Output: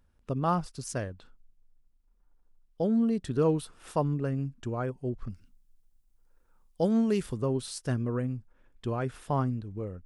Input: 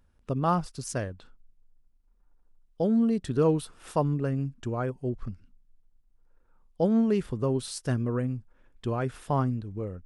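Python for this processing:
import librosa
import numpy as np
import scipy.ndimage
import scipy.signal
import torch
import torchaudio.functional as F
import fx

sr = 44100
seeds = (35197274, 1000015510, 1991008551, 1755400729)

y = fx.high_shelf(x, sr, hz=4100.0, db=12.0, at=(5.3, 7.42))
y = F.gain(torch.from_numpy(y), -2.0).numpy()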